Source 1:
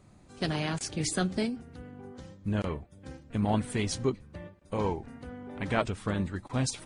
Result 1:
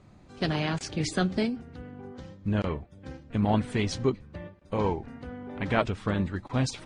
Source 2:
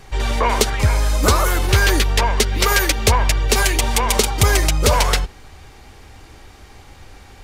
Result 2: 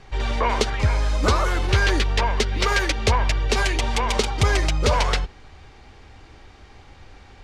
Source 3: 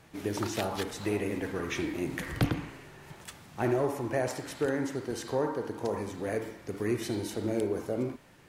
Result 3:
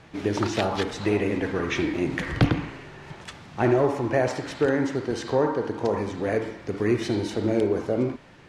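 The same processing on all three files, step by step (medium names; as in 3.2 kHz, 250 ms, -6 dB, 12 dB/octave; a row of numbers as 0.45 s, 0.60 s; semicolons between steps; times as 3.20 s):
low-pass 5.1 kHz 12 dB/octave; peak normalisation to -9 dBFS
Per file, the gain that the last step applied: +3.0 dB, -4.0 dB, +7.5 dB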